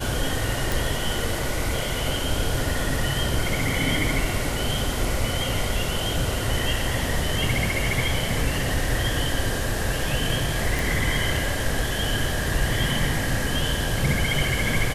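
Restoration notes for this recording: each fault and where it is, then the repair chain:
0.72 s: pop
10.79 s: pop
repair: de-click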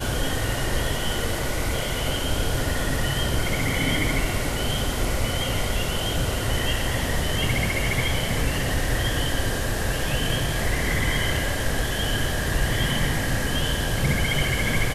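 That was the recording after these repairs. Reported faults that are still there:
nothing left

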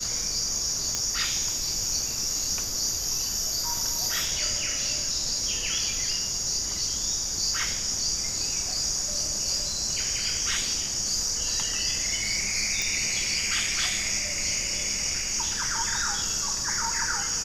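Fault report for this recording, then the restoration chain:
0.95 s: pop -12 dBFS
12.82 s: pop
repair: de-click

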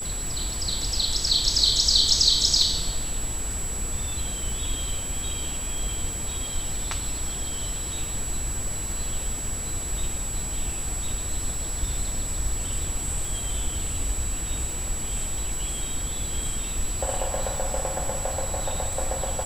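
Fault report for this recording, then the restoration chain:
crackle 29 per s -31 dBFS
whine 7.8 kHz -31 dBFS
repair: de-click; band-stop 7.8 kHz, Q 30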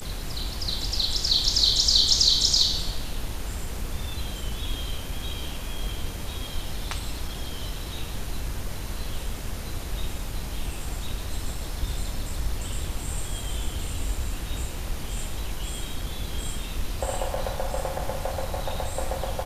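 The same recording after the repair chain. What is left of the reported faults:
nothing left

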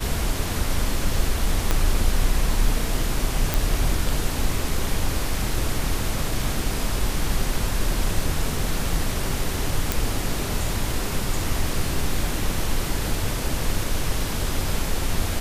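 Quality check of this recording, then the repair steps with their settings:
1.71 s: pop -5 dBFS
3.54 s: pop
9.92 s: pop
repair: de-click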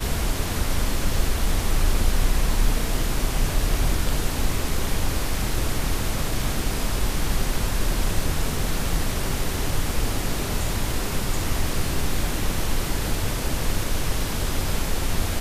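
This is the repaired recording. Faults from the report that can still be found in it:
1.71 s: pop

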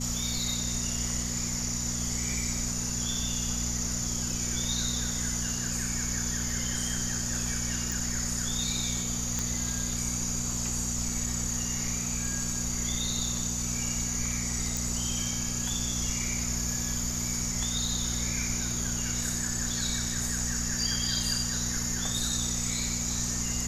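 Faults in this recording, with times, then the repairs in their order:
hum 60 Hz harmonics 4 -35 dBFS
7.92 s: pop
9.39 s: pop -14 dBFS
14.77 s: pop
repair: de-click; de-hum 60 Hz, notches 4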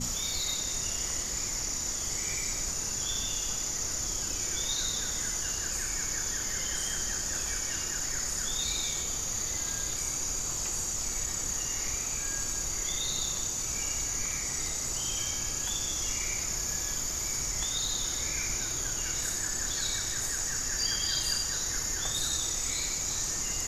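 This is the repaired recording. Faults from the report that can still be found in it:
nothing left

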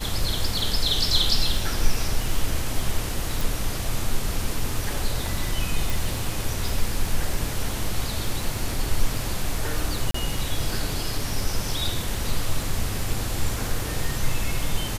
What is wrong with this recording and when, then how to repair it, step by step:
crackle 32 per s -29 dBFS
3.41 s: pop
5.90 s: pop
10.11–10.14 s: dropout 34 ms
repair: de-click; interpolate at 10.11 s, 34 ms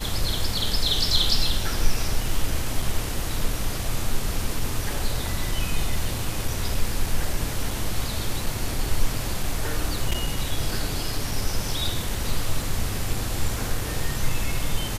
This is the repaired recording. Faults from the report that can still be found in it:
nothing left

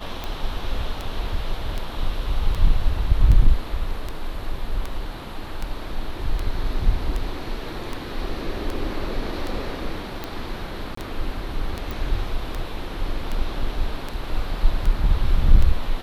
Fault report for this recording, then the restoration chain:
tick 78 rpm -14 dBFS
10.95–10.97 s: dropout 24 ms
11.91 s: pop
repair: de-click; interpolate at 10.95 s, 24 ms

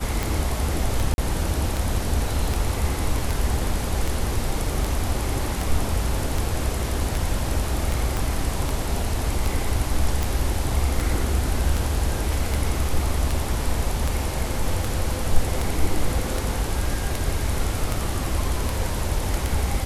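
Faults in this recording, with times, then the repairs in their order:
tick 78 rpm
1.14–1.18 s: dropout 41 ms
8.17 s: pop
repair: de-click; interpolate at 1.14 s, 41 ms

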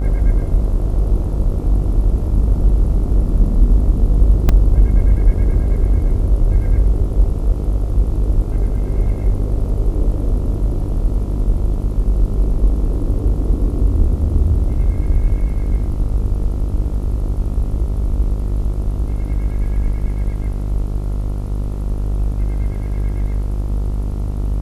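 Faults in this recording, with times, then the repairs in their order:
buzz 50 Hz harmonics 28 -20 dBFS
4.49 s: dropout 2.2 ms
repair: de-hum 50 Hz, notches 28; interpolate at 4.49 s, 2.2 ms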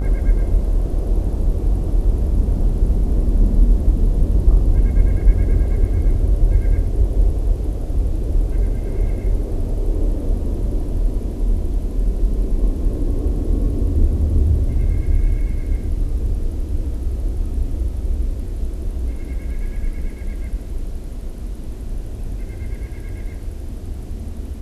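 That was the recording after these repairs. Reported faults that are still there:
nothing left

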